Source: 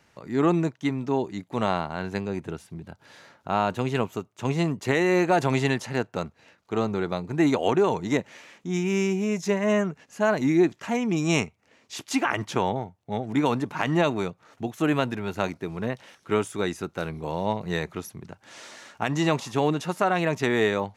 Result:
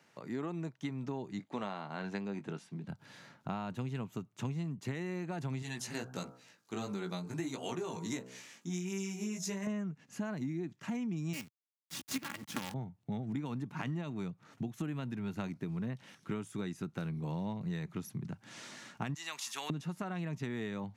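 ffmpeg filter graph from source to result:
-filter_complex "[0:a]asettb=1/sr,asplit=3[a][b][c];[a]atrim=end=1.394[d];[b]atrim=start=1.39:end=2.88,asetpts=PTS-STARTPTS,afade=t=in:d=0.004:c=qsin,afade=t=out:st=1.486:d=0.004:c=qsin,highpass=230,lowpass=7.3k,asplit=2[e][f];[f]adelay=20,volume=-11dB[g];[e][g]amix=inputs=2:normalize=0,atrim=end_sample=65709[h];[c]atrim=start=2.876[i];[d][h]acrossfade=d=0.004:c1=hsin:c2=qsin[j];[j][i]acrossfade=d=0.004:c1=qsin:c2=hsin,asettb=1/sr,asplit=3[k][l][m];[k]atrim=end=5.624[n];[l]atrim=start=5.62:end=9.67,asetpts=PTS-STARTPTS,afade=t=in:d=0.004:c=qsin,afade=t=out:st=4.046:d=0.004:c=qsin,bass=f=250:g=-10,treble=f=4k:g=12,bandreject=f=63.44:t=h:w=4,bandreject=f=126.88:t=h:w=4,bandreject=f=190.32:t=h:w=4,bandreject=f=253.76:t=h:w=4,bandreject=f=317.2:t=h:w=4,bandreject=f=380.64:t=h:w=4,bandreject=f=444.08:t=h:w=4,bandreject=f=507.52:t=h:w=4,bandreject=f=570.96:t=h:w=4,bandreject=f=634.4:t=h:w=4,bandreject=f=697.84:t=h:w=4,bandreject=f=761.28:t=h:w=4,bandreject=f=824.72:t=h:w=4,bandreject=f=888.16:t=h:w=4,bandreject=f=951.6:t=h:w=4,bandreject=f=1.01504k:t=h:w=4,bandreject=f=1.07848k:t=h:w=4,bandreject=f=1.14192k:t=h:w=4,bandreject=f=1.20536k:t=h:w=4,bandreject=f=1.2688k:t=h:w=4,bandreject=f=1.33224k:t=h:w=4,bandreject=f=1.39568k:t=h:w=4,bandreject=f=1.45912k:t=h:w=4,bandreject=f=1.52256k:t=h:w=4,bandreject=f=1.586k:t=h:w=4,bandreject=f=1.64944k:t=h:w=4,flanger=delay=15.5:depth=2.7:speed=1.5[o];[m]atrim=start=9.666[p];[n][o]acrossfade=d=0.004:c1=hsin:c2=qsin[q];[q][p]acrossfade=d=0.004:c1=qsin:c2=hsin,asettb=1/sr,asplit=3[r][s][t];[r]atrim=end=11.334[u];[s]atrim=start=11.33:end=12.74,asetpts=PTS-STARTPTS,afade=t=in:d=0.004:c=qsin,afade=t=out:st=1.406:d=0.004:c=qsin,equalizer=f=380:w=0.56:g=-6,aecho=1:1:3.6:0.92,atrim=end_sample=62181,acrusher=bits=4:dc=4:mix=0:aa=0.000001[v];[t]atrim=start=12.736[w];[u][v]acrossfade=d=0.004:c1=hsin:c2=qsin[x];[x][w]acrossfade=d=0.004:c1=qsin:c2=hsin,asettb=1/sr,asplit=3[y][z][aa];[y]atrim=end=19.144[ab];[z]atrim=start=19.14:end=19.7,asetpts=PTS-STARTPTS,afade=t=in:d=0.004:c=qsin,afade=t=out:st=0.556:d=0.004:c=qsin,highpass=1.3k,highshelf=f=5.7k:g=10[ac];[aa]atrim=start=19.696[ad];[ab][ac]acrossfade=d=0.004:c1=hsin:c2=qsin[ae];[ae][ad]acrossfade=d=0.004:c1=qsin:c2=hsin,highpass=f=130:w=0.5412,highpass=f=130:w=1.3066,asubboost=boost=6.5:cutoff=190,acompressor=threshold=-30dB:ratio=12,volume=-4.5dB"

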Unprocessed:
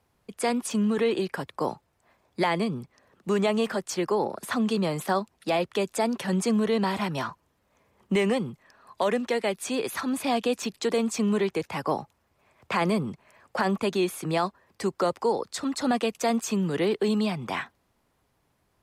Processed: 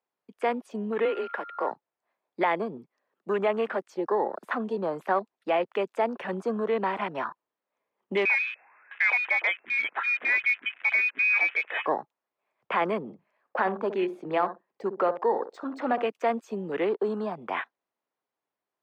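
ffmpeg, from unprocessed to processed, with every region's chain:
-filter_complex "[0:a]asettb=1/sr,asplit=3[a][b][c];[a]atrim=end=1.054[d];[b]atrim=start=1.05:end=1.71,asetpts=PTS-STARTPTS,afade=t=in:d=0.004:c=qsin,afade=t=out:st=0.656:d=0.004:c=qsin,equalizer=f=90:t=o:w=2.2:g=-13.5,afreqshift=36,aeval=exprs='val(0)+0.0126*sin(2*PI*1400*n/s)':c=same[e];[c]atrim=start=1.706[f];[d][e]acrossfade=d=0.004:c1=hsin:c2=qsin[g];[g][f]acrossfade=d=0.004:c1=qsin:c2=hsin,asettb=1/sr,asplit=3[h][i][j];[h]atrim=end=8.254[k];[i]atrim=start=8.25:end=11.86,asetpts=PTS-STARTPTS,afade=t=in:d=0.004:c=qsin,afade=t=out:st=3.606:d=0.004:c=qsin,aeval=exprs='val(0)+0.5*0.0141*sgn(val(0))':c=same,lowpass=f=2.3k:t=q:w=0.5098,lowpass=f=2.3k:t=q:w=0.6013,lowpass=f=2.3k:t=q:w=0.9,lowpass=f=2.3k:t=q:w=2.563,afreqshift=-2700[l];[j]atrim=start=11.856[m];[k][l]acrossfade=d=0.004:c1=hsin:c2=qsin[n];[n][m]acrossfade=d=0.004:c1=qsin:c2=hsin,asettb=1/sr,asplit=3[o][p][q];[o]atrim=end=13.024[r];[p]atrim=start=13.02:end=16.08,asetpts=PTS-STARTPTS,afade=t=in:d=0.004:c=qsin,afade=t=out:st=3.056:d=0.004:c=qsin,adynamicsmooth=sensitivity=7.5:basefreq=6.2k,asplit=2[s][t];[t]adelay=64,lowpass=f=910:p=1,volume=-9dB,asplit=2[u][v];[v]adelay=64,lowpass=f=910:p=1,volume=0.25,asplit=2[w][x];[x]adelay=64,lowpass=f=910:p=1,volume=0.25[y];[s][u][w][y]amix=inputs=4:normalize=0,atrim=end_sample=134946[z];[q]atrim=start=16.076[aa];[r][z]acrossfade=d=0.004:c1=hsin:c2=qsin[ab];[ab][aa]acrossfade=d=0.004:c1=qsin:c2=hsin,afwtdn=0.0158,highpass=380,equalizer=f=9.9k:t=o:w=1.5:g=-13,volume=1.5dB"

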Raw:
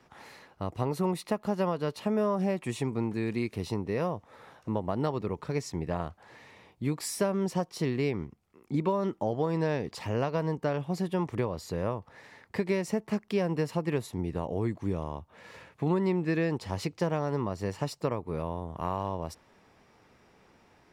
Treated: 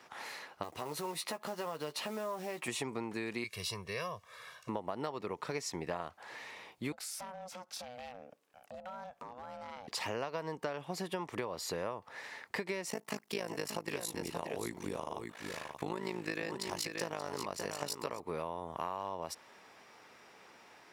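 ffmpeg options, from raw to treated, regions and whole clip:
-filter_complex "[0:a]asettb=1/sr,asplit=3[a][b][c];[a]atrim=end=0.634[d];[b]atrim=start=0.63:end=2.68,asetpts=PTS-STARTPTS,afade=t=in:d=0.004:c=qsin,afade=t=out:st=2.046:d=0.004:c=qsin,acompressor=threshold=-39dB:ratio=2.5:attack=3.2:release=140:knee=1:detection=peak,acrusher=bits=6:mode=log:mix=0:aa=0.000001,asplit=2[e][f];[f]adelay=13,volume=-7.5dB[g];[e][g]amix=inputs=2:normalize=0,atrim=end_sample=90405[h];[c]atrim=start=2.676[i];[d][h]acrossfade=d=0.004:c1=hsin:c2=qsin[j];[j][i]acrossfade=d=0.004:c1=qsin:c2=hsin,asettb=1/sr,asplit=3[k][l][m];[k]atrim=end=3.444[n];[l]atrim=start=3.44:end=4.69,asetpts=PTS-STARTPTS,afade=t=in:d=0.004:c=qsin,afade=t=out:st=1.246:d=0.004:c=qsin,equalizer=f=510:t=o:w=2.6:g=-13,aecho=1:1:1.8:0.87,atrim=end_sample=55125[o];[m]atrim=start=4.686[p];[n][o]acrossfade=d=0.004:c1=hsin:c2=qsin[q];[q][p]acrossfade=d=0.004:c1=qsin:c2=hsin,asettb=1/sr,asplit=3[r][s][t];[r]atrim=end=6.924[u];[s]atrim=start=6.92:end=9.88,asetpts=PTS-STARTPTS,afade=t=in:d=0.004:c=qsin,afade=t=out:st=2.956:d=0.004:c=qsin,acompressor=threshold=-44dB:ratio=4:attack=3.2:release=140:knee=1:detection=peak,asoftclip=type=hard:threshold=-38dB,aeval=exprs='val(0)*sin(2*PI*370*n/s)':c=same[v];[t]atrim=start=9.876[w];[u][v]acrossfade=d=0.004:c1=hsin:c2=qsin[x];[x][w]acrossfade=d=0.004:c1=qsin:c2=hsin,asettb=1/sr,asplit=3[y][z][aa];[y]atrim=end=12.904[ab];[z]atrim=start=12.9:end=18.2,asetpts=PTS-STARTPTS,afade=t=in:d=0.004:c=qsin,afade=t=out:st=5.296:d=0.004:c=qsin,tremolo=f=53:d=0.919,highshelf=f=4.7k:g=11,aecho=1:1:580:0.398,atrim=end_sample=233730[ac];[aa]atrim=start=18.196[ad];[ab][ac]acrossfade=d=0.004:c1=hsin:c2=qsin[ae];[ae][ad]acrossfade=d=0.004:c1=qsin:c2=hsin,highpass=f=840:p=1,acompressor=threshold=-41dB:ratio=6,volume=7dB"

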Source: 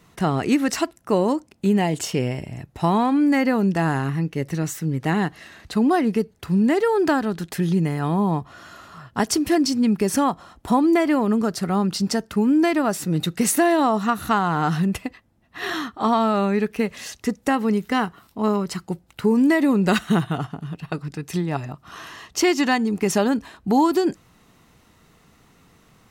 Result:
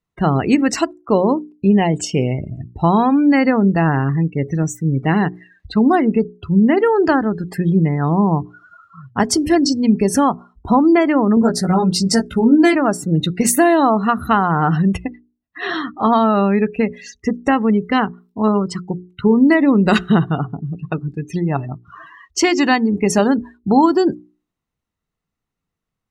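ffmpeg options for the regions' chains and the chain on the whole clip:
-filter_complex "[0:a]asettb=1/sr,asplit=3[a][b][c];[a]atrim=end=11.354[d];[b]atrim=start=11.35:end=12.76,asetpts=PTS-STARTPTS,afade=t=in:d=0.004:c=qsin,afade=t=out:st=1.406:d=0.004:c=qsin,highshelf=f=8.2k:g=7.5,bandreject=f=1.2k:w=7,asplit=2[e][f];[f]adelay=17,volume=-2.5dB[g];[e][g]amix=inputs=2:normalize=0,atrim=end_sample=62181[h];[c]atrim=start=12.756[i];[d][h]acrossfade=d=0.004:c1=hsin:c2=qsin[j];[j][i]acrossfade=d=0.004:c1=qsin:c2=hsin,afftdn=nr=34:nf=-33,lowshelf=f=69:g=10.5,bandreject=f=60:t=h:w=6,bandreject=f=120:t=h:w=6,bandreject=f=180:t=h:w=6,bandreject=f=240:t=h:w=6,bandreject=f=300:t=h:w=6,bandreject=f=360:t=h:w=6,bandreject=f=420:t=h:w=6,volume=5dB"

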